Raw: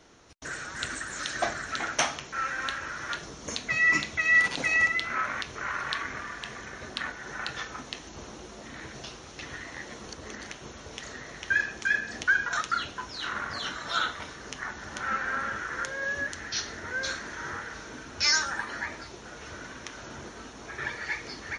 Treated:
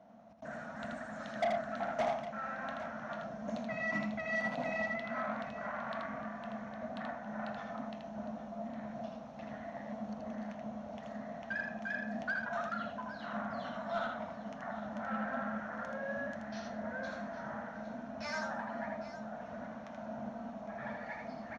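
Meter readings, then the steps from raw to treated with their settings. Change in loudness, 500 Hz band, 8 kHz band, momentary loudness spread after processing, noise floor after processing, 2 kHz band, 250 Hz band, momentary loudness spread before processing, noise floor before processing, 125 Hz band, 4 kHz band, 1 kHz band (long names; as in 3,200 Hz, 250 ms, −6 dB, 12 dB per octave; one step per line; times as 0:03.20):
−10.5 dB, +2.5 dB, below −25 dB, 9 LU, −47 dBFS, −13.5 dB, +3.0 dB, 19 LU, −46 dBFS, −4.0 dB, −20.0 dB, −5.0 dB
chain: pair of resonant band-passes 380 Hz, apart 1.6 octaves
soft clipping −36.5 dBFS, distortion −9 dB
multi-tap delay 80/808 ms −4/−13.5 dB
level +9 dB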